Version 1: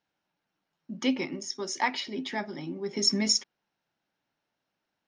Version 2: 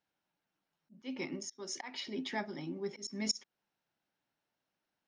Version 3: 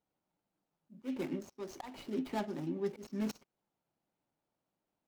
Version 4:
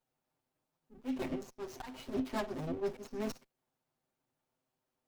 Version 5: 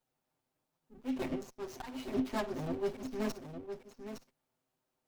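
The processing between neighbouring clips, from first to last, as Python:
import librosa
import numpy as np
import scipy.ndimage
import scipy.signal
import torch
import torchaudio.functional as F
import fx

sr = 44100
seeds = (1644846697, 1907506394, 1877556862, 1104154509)

y1 = fx.auto_swell(x, sr, attack_ms=259.0)
y1 = y1 * 10.0 ** (-4.5 / 20.0)
y2 = scipy.signal.medfilt(y1, 25)
y2 = y2 * 10.0 ** (3.5 / 20.0)
y3 = fx.lower_of_two(y2, sr, delay_ms=7.8)
y3 = y3 * 10.0 ** (2.0 / 20.0)
y4 = y3 + 10.0 ** (-8.5 / 20.0) * np.pad(y3, (int(861 * sr / 1000.0), 0))[:len(y3)]
y4 = y4 * 10.0 ** (1.0 / 20.0)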